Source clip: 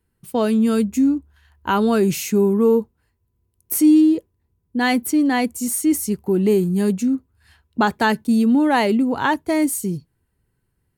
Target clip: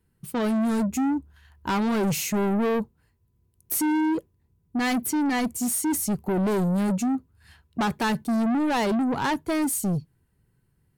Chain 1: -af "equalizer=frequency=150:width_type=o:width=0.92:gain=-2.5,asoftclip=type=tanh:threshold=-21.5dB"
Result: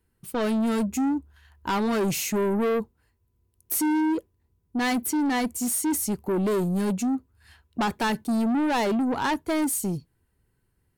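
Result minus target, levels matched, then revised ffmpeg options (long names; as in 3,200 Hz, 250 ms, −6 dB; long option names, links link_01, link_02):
125 Hz band −2.5 dB
-af "equalizer=frequency=150:width_type=o:width=0.92:gain=6.5,asoftclip=type=tanh:threshold=-21.5dB"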